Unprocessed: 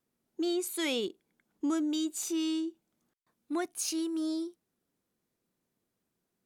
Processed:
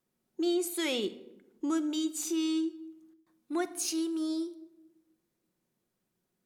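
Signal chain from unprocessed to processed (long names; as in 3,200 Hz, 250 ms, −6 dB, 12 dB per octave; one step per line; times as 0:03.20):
rectangular room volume 3,300 cubic metres, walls furnished, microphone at 0.99 metres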